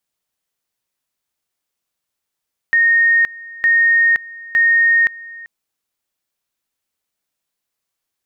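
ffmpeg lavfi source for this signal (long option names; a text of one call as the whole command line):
ffmpeg -f lavfi -i "aevalsrc='pow(10,(-9.5-21.5*gte(mod(t,0.91),0.52))/20)*sin(2*PI*1850*t)':duration=2.73:sample_rate=44100" out.wav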